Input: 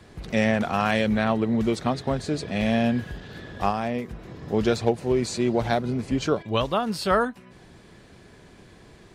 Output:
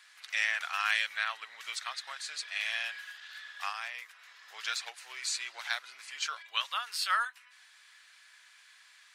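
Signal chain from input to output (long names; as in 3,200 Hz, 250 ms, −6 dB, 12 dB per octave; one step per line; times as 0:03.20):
high-pass filter 1,400 Hz 24 dB per octave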